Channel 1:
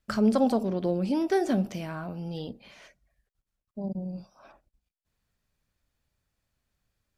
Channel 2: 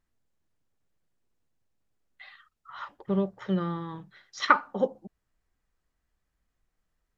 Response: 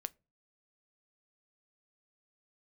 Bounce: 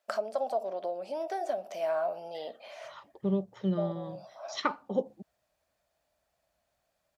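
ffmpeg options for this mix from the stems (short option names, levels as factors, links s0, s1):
-filter_complex "[0:a]acompressor=threshold=0.0178:ratio=5,highpass=f=640:t=q:w=7,volume=1.06[s0];[1:a]highpass=74,equalizer=f=1500:t=o:w=1.4:g=-11.5,adelay=150,volume=0.841[s1];[s0][s1]amix=inputs=2:normalize=0"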